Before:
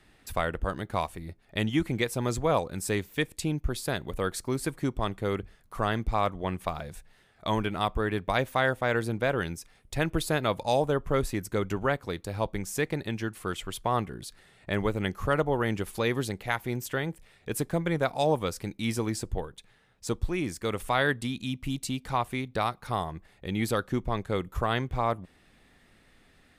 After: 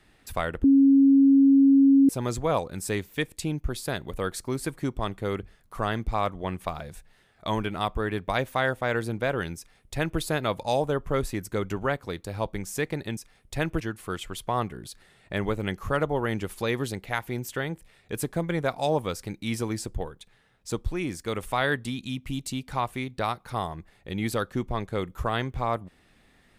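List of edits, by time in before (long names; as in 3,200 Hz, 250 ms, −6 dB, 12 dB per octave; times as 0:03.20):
0:00.64–0:02.09: beep over 274 Hz −13.5 dBFS
0:09.57–0:10.20: duplicate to 0:13.17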